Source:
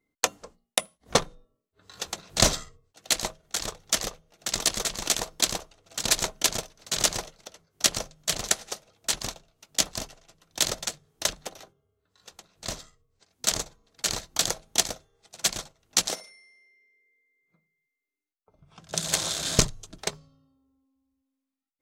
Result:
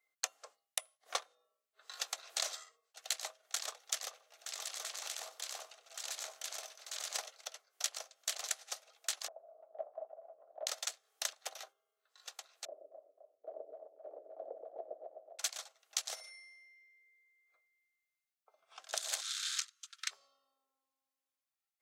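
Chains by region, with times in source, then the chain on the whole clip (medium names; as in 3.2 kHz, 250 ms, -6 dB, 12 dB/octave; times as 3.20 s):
4.10–7.15 s: compression 4:1, threshold -38 dBFS + transient shaper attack -5 dB, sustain +4 dB + delay 95 ms -16 dB
9.28–10.67 s: upward compressor, threshold -27 dBFS + four-pole ladder low-pass 670 Hz, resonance 75%
12.65–15.39 s: Chebyshev band-pass 270–620 Hz, order 3 + two-band feedback delay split 570 Hz, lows 124 ms, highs 259 ms, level -3.5 dB
19.21–20.11 s: elliptic high-pass 1.3 kHz, stop band 50 dB + treble shelf 11 kHz -9.5 dB
whole clip: high-pass 640 Hz 24 dB/octave; band-stop 950 Hz, Q 6; compression 6:1, threshold -35 dBFS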